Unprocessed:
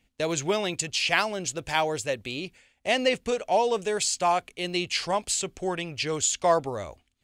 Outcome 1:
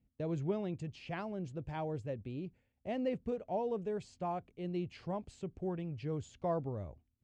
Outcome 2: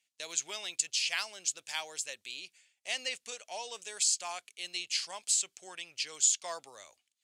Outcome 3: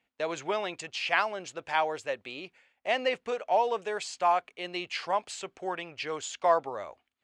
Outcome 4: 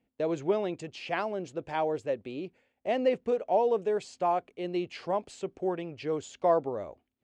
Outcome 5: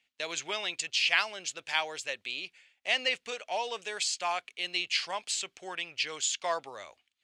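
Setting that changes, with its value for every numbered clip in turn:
band-pass filter, frequency: 110 Hz, 7.5 kHz, 1.1 kHz, 390 Hz, 2.9 kHz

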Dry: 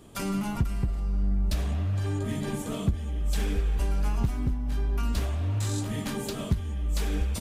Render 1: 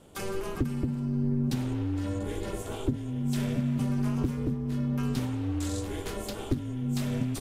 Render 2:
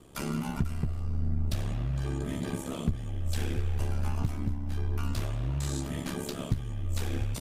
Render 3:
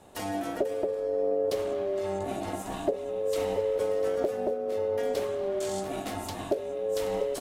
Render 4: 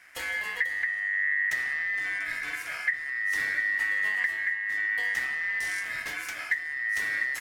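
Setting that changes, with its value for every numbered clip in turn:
ring modulator, frequency: 190 Hz, 35 Hz, 490 Hz, 1.9 kHz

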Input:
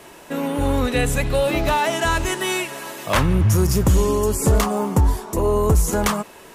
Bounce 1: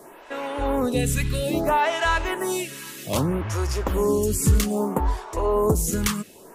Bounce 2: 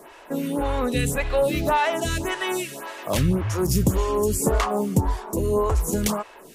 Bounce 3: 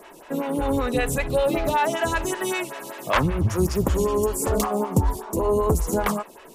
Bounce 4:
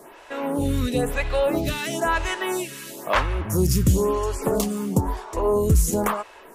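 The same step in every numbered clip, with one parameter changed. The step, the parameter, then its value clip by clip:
lamp-driven phase shifter, rate: 0.62 Hz, 1.8 Hz, 5.2 Hz, 1 Hz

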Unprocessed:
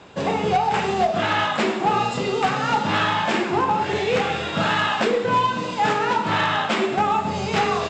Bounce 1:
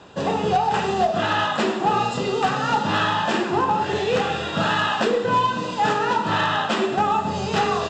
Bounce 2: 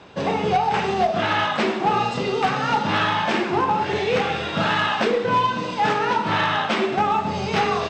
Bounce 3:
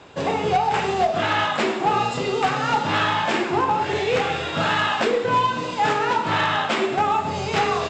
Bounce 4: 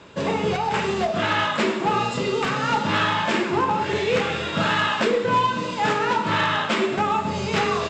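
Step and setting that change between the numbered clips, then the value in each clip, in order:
band-stop, frequency: 2.2 kHz, 7.2 kHz, 200 Hz, 760 Hz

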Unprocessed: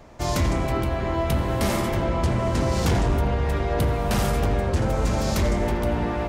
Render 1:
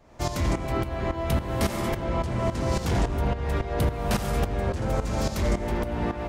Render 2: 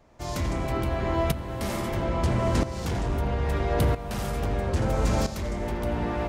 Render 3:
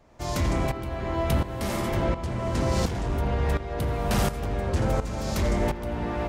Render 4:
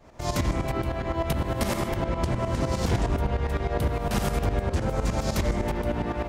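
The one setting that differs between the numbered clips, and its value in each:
tremolo, rate: 3.6 Hz, 0.76 Hz, 1.4 Hz, 9.8 Hz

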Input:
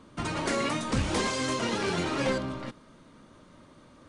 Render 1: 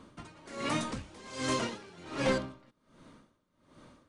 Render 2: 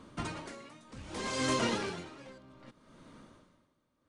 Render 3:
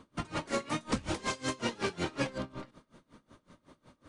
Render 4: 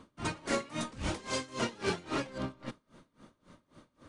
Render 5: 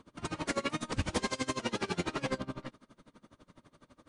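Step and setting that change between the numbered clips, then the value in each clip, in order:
logarithmic tremolo, rate: 1.3 Hz, 0.64 Hz, 5.4 Hz, 3.7 Hz, 12 Hz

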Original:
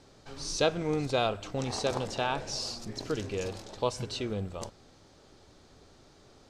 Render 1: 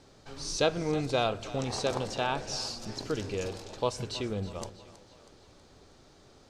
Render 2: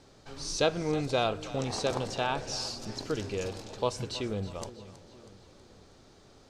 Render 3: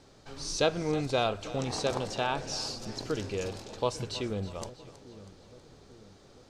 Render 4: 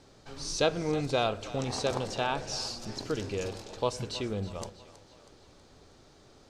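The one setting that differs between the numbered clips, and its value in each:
two-band feedback delay, lows: 162 ms, 465 ms, 846 ms, 99 ms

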